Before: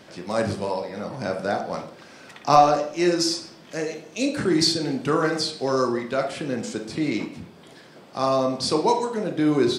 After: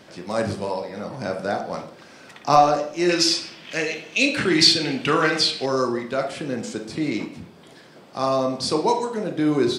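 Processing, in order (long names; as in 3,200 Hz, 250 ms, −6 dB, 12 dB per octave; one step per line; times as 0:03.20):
0:03.09–0:05.66: parametric band 2,700 Hz +14.5 dB 1.4 octaves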